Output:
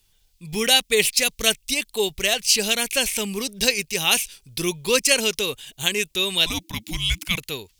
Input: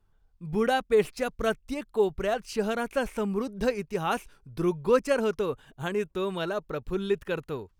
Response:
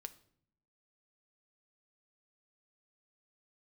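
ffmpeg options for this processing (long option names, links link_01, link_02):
-filter_complex "[0:a]asettb=1/sr,asplit=3[link_01][link_02][link_03];[link_01]atrim=end=6.464[link_04];[link_02]atrim=start=6.46:end=7.38,asetpts=PTS-STARTPTS,afade=type=in:duration=0.004:curve=qsin,afade=type=out:start_time=0.916:duration=0.004:curve=qsin,afreqshift=-340[link_05];[link_03]atrim=start=7.376[link_06];[link_04][link_05]acrossfade=duration=0.004:curve1=hsin:curve2=qsin[link_07];[link_07][link_06]acrossfade=duration=0.004:curve1=qsin:curve2=hsin,aexciter=amount=10.7:drive=5.9:freq=2100"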